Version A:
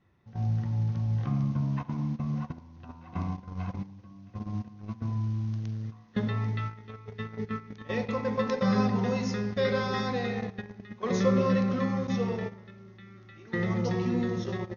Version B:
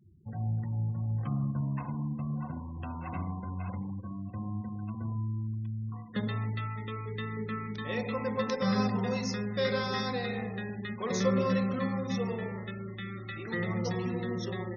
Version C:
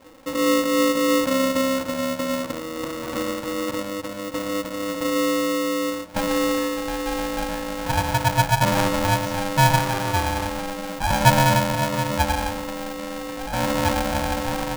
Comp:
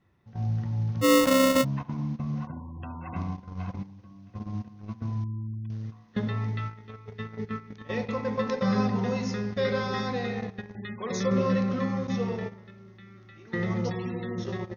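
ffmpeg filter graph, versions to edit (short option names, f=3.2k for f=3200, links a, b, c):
-filter_complex "[1:a]asplit=4[a][b][c][d];[0:a]asplit=6[e][f][g][h][i][j];[e]atrim=end=1.05[k];[2:a]atrim=start=1.01:end=1.65[l];[f]atrim=start=1.61:end=2.472[m];[a]atrim=start=2.468:end=3.162[n];[g]atrim=start=3.158:end=5.242[o];[b]atrim=start=5.238:end=5.702[p];[h]atrim=start=5.698:end=10.752[q];[c]atrim=start=10.748:end=11.312[r];[i]atrim=start=11.308:end=13.902[s];[d]atrim=start=13.898:end=14.382[t];[j]atrim=start=14.378[u];[k][l]acrossfade=d=0.04:c1=tri:c2=tri[v];[v][m]acrossfade=d=0.04:c1=tri:c2=tri[w];[w][n]acrossfade=d=0.004:c1=hsin:c2=hsin[x];[x][o]acrossfade=d=0.004:c1=hsin:c2=hsin[y];[y][p]acrossfade=d=0.004:c1=hsin:c2=hsin[z];[z][q]acrossfade=d=0.004:c1=hsin:c2=hsin[aa];[aa][r]acrossfade=d=0.004:c1=hsin:c2=hsin[ab];[ab][s]acrossfade=d=0.004:c1=hsin:c2=hsin[ac];[ac][t]acrossfade=d=0.004:c1=hsin:c2=hsin[ad];[ad][u]acrossfade=d=0.004:c1=hsin:c2=hsin"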